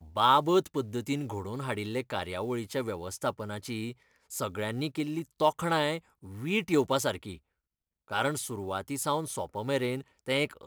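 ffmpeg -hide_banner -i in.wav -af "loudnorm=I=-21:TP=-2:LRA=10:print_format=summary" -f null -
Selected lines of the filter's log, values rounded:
Input Integrated:    -31.2 LUFS
Input True Peak:     -11.0 dBTP
Input LRA:             4.9 LU
Input Threshold:     -41.5 LUFS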